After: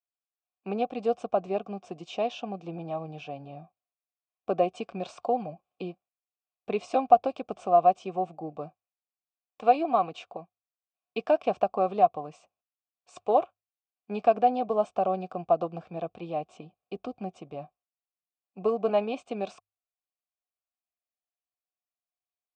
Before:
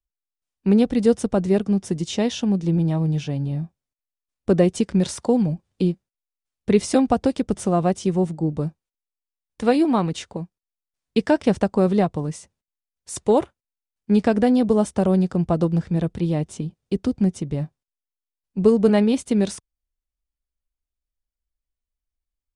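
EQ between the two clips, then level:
formant filter a
elliptic low-pass filter 8,300 Hz
mains-hum notches 50/100 Hz
+7.5 dB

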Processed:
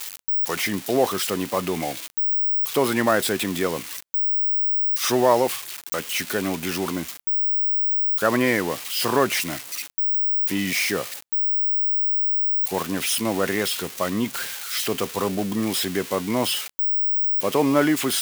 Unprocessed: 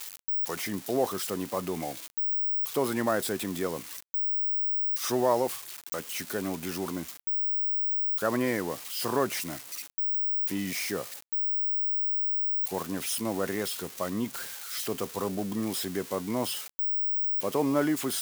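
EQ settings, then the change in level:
dynamic equaliser 2,600 Hz, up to +6 dB, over −48 dBFS, Q 0.89
+6.5 dB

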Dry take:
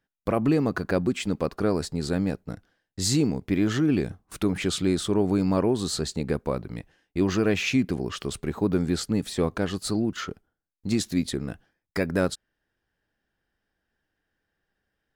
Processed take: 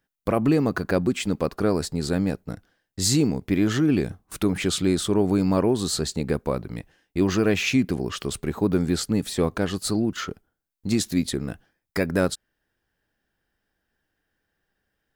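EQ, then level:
high-shelf EQ 11,000 Hz +7.5 dB
+2.0 dB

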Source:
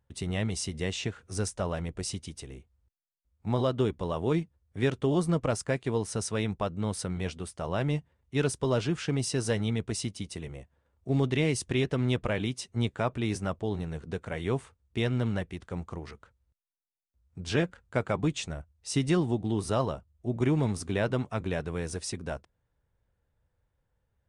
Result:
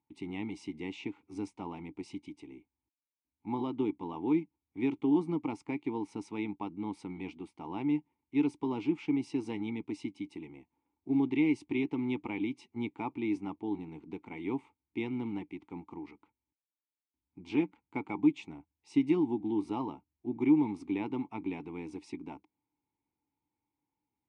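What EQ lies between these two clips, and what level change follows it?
formant filter u
low-shelf EQ 70 Hz −7 dB
+8.0 dB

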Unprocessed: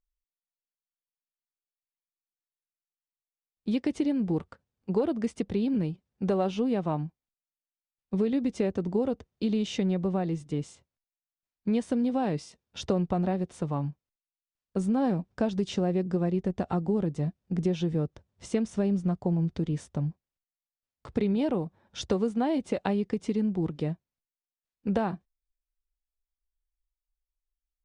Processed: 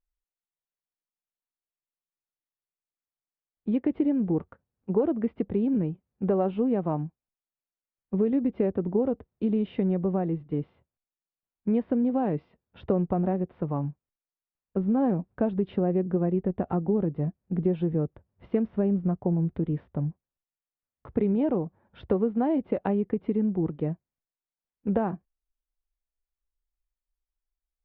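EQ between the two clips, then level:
dynamic equaliser 370 Hz, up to +3 dB, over −34 dBFS, Q 0.77
Gaussian smoothing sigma 3.9 samples
0.0 dB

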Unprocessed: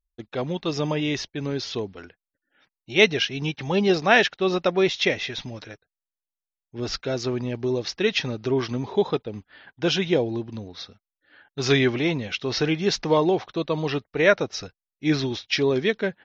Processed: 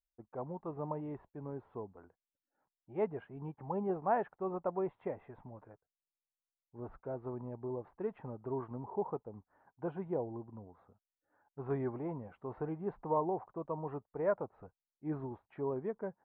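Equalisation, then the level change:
transistor ladder low-pass 1,100 Hz, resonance 55%
high-frequency loss of the air 340 metres
parametric band 300 Hz −2 dB
−4.5 dB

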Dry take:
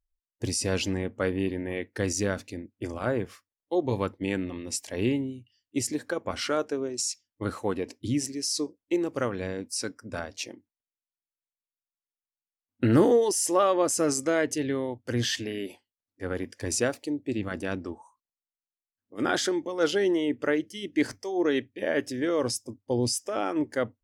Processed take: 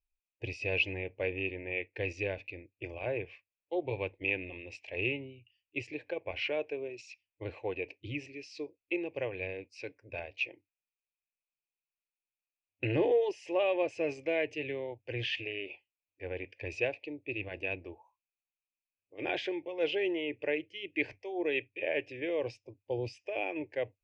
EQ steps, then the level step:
transistor ladder low-pass 2,600 Hz, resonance 85%
phaser with its sweep stopped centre 540 Hz, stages 4
+7.5 dB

